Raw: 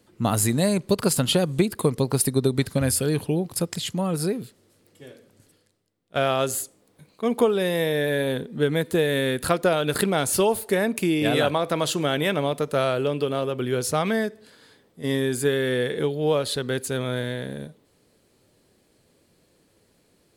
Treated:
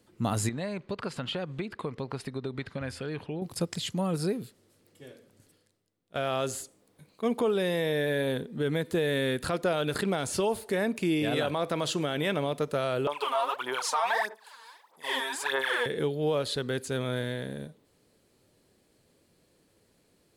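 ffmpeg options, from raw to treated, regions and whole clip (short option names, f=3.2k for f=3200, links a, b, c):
-filter_complex "[0:a]asettb=1/sr,asplit=3[a][b][c];[a]atrim=end=0.494[d];[b]atrim=start=0.49:end=3.42,asetpts=PTS-STARTPTS,afade=t=in:d=0.004:c=qsin,afade=t=out:st=2.926:d=0.004:c=qsin,lowpass=2.2k,tiltshelf=f=870:g=-6,acompressor=threshold=-29dB:ratio=2:attack=3.2:release=140:knee=1:detection=peak[e];[c]atrim=start=3.416[f];[d][e]acrossfade=d=0.004:c1=hsin:c2=qsin[g];[g][f]acrossfade=d=0.004:c1=qsin:c2=hsin,asettb=1/sr,asplit=3[h][i][j];[h]atrim=end=13.074[k];[i]atrim=start=13.07:end=15.86,asetpts=PTS-STARTPTS,afade=t=in:d=0.004:c=qsin,afade=t=out:st=2.786:d=0.004:c=qsin,aphaser=in_gain=1:out_gain=1:delay=4.5:decay=0.79:speed=1.6:type=sinusoidal,highpass=f=930:t=q:w=5.7[l];[j]atrim=start=15.856[m];[k][l]acrossfade=d=0.004:c1=hsin:c2=qsin[n];[n][m]acrossfade=d=0.004:c1=qsin:c2=hsin,acrossover=split=8300[o][p];[p]acompressor=threshold=-46dB:ratio=4:attack=1:release=60[q];[o][q]amix=inputs=2:normalize=0,alimiter=limit=-14.5dB:level=0:latency=1:release=37,volume=-4dB"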